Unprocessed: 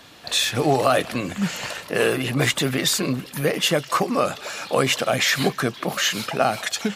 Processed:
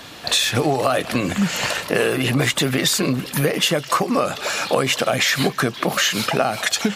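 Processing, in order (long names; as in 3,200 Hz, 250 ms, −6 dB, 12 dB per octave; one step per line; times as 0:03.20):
downward compressor, threshold −24 dBFS, peak gain reduction 10.5 dB
level +8.5 dB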